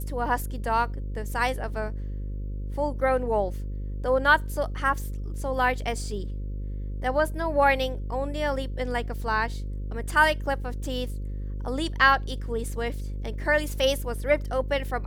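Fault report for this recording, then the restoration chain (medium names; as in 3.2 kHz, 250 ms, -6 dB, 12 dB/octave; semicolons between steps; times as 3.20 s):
buzz 50 Hz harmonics 11 -32 dBFS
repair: de-hum 50 Hz, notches 11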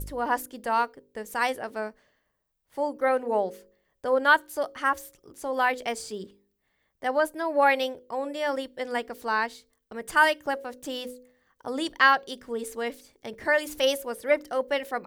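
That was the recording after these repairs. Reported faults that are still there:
nothing left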